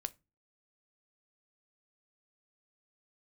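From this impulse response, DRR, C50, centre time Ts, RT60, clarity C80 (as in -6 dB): 12.0 dB, 24.0 dB, 2 ms, no single decay rate, 32.0 dB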